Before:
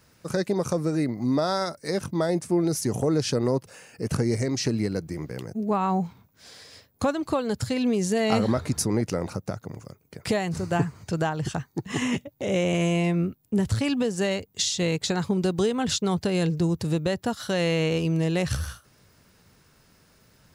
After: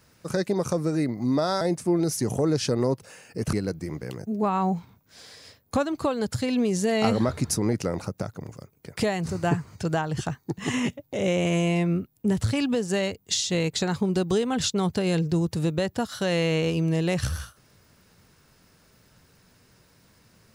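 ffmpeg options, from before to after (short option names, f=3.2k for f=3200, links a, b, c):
-filter_complex "[0:a]asplit=3[a][b][c];[a]atrim=end=1.612[d];[b]atrim=start=2.248:end=4.172[e];[c]atrim=start=4.808[f];[d][e]acrossfade=d=0.004:c1=hsin:c2=hsin[g];[g][f]acrossfade=d=0.004:c1=hsin:c2=hsin"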